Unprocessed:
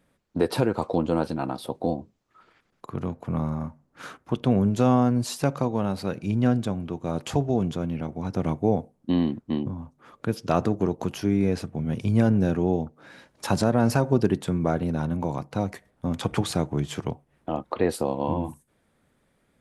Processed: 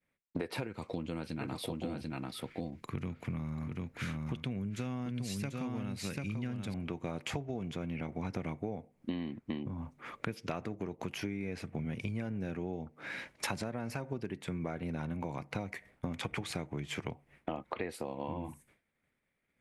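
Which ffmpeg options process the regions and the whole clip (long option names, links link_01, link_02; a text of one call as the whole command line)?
ffmpeg -i in.wav -filter_complex "[0:a]asettb=1/sr,asplit=3[link_01][link_02][link_03];[link_01]atrim=end=0.674[link_04];[link_02]atrim=start=0.67:end=6.74,asetpts=PTS-STARTPTS,afade=type=in:duration=0.004:curve=qsin,afade=type=out:start_time=6.066:duration=0.004:curve=qsin,equalizer=frequency=740:width=0.56:gain=-10.5,aecho=1:1:740:0.531,atrim=end_sample=267687[link_05];[link_03]atrim=start=6.736[link_06];[link_04][link_05]acrossfade=duration=0.004:curve1=hsin:curve2=qsin[link_07];[link_07][link_06]acrossfade=duration=0.004:curve1=qsin:curve2=hsin,agate=range=-33dB:threshold=-55dB:ratio=3:detection=peak,equalizer=frequency=2200:width=2.1:gain=13,acompressor=threshold=-35dB:ratio=16,volume=1.5dB" out.wav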